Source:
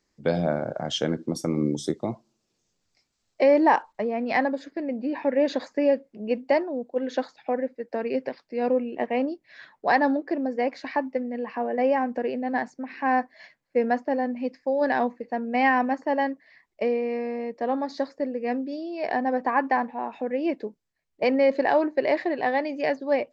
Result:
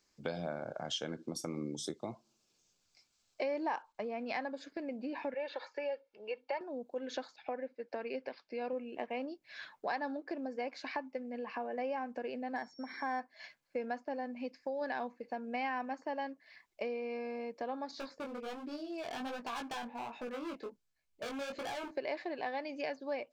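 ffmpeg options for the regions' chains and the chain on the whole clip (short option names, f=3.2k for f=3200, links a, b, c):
-filter_complex "[0:a]asettb=1/sr,asplit=3[a][b][c];[a]atrim=end=5.344[d];[b]atrim=start=5.34:end=6.61,asetpts=PTS-STARTPTS,afade=t=in:d=0.004:c=qsin,afade=t=out:st=1.266:d=0.004:c=qsin,acrossover=split=3300[e][f];[f]acompressor=threshold=-54dB:ratio=4:attack=1:release=60[g];[e][g]amix=inputs=2:normalize=0,acrossover=split=530 5300:gain=0.178 1 0.0891[h][i][j];[h][i][j]amix=inputs=3:normalize=0,aecho=1:1:2.2:0.62,atrim=end_sample=56007[k];[c]atrim=start=6.606[l];[d][k]acrossfade=d=0.004:c1=hsin:c2=qsin[m];[m][l]acrossfade=d=0.004:c1=qsin:c2=hsin,asettb=1/sr,asplit=3[n][o][p];[n]atrim=end=7.364[q];[o]atrim=start=7.36:end=8.73,asetpts=PTS-STARTPTS,afade=t=in:d=0.004:c=qsin,afade=t=out:st=1.366:d=0.004:c=qsin,lowpass=5.1k,lowshelf=f=130:g=-10.5[r];[p]atrim=start=8.726[s];[q][r]acrossfade=d=0.004:c1=hsin:c2=qsin[t];[t][s]acrossfade=d=0.004:c1=qsin:c2=hsin,asettb=1/sr,asplit=3[u][v][w];[u]atrim=end=12.564[x];[v]atrim=start=12.56:end=13.2,asetpts=PTS-STARTPTS,afade=t=in:d=0.004:c=qsin,afade=t=out:st=0.636:d=0.004:c=qsin,asuperstop=centerf=2700:order=20:qfactor=4.1,aeval=exprs='val(0)+0.00282*sin(2*PI*5500*n/s)':c=same,adynamicsmooth=sensitivity=2.5:basefreq=5.4k[y];[w]atrim=start=13.196[z];[x][y]acrossfade=d=0.004:c1=hsin:c2=qsin[aa];[aa][z]acrossfade=d=0.004:c1=qsin:c2=hsin,asettb=1/sr,asplit=3[ab][ac][ad];[ab]atrim=end=17.914[ae];[ac]atrim=start=17.91:end=21.91,asetpts=PTS-STARTPTS,afade=t=in:d=0.004:c=qsin,afade=t=out:st=3.996:d=0.004:c=qsin,lowshelf=f=120:g=9,volume=27.5dB,asoftclip=hard,volume=-27.5dB,flanger=delay=16.5:depth=5.4:speed=1.3[af];[ad]atrim=start=21.906[ag];[ae][af]acrossfade=d=0.004:c1=hsin:c2=qsin[ah];[ah][ag]acrossfade=d=0.004:c1=qsin:c2=hsin,tiltshelf=f=840:g=-4.5,bandreject=f=1.9k:w=7.6,acompressor=threshold=-38dB:ratio=2.5,volume=-2dB"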